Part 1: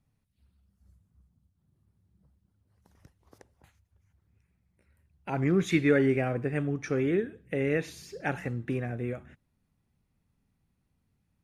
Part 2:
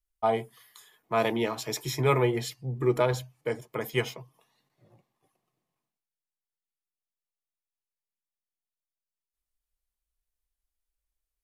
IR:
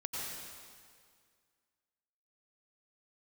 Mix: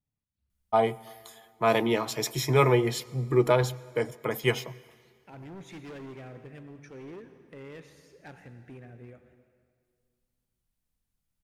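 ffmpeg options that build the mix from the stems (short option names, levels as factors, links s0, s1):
-filter_complex "[0:a]asoftclip=type=hard:threshold=0.0501,volume=0.15,asplit=2[s0][s1];[s1]volume=0.355[s2];[1:a]adelay=500,volume=1.26,asplit=2[s3][s4];[s4]volume=0.0794[s5];[2:a]atrim=start_sample=2205[s6];[s2][s5]amix=inputs=2:normalize=0[s7];[s7][s6]afir=irnorm=-1:irlink=0[s8];[s0][s3][s8]amix=inputs=3:normalize=0"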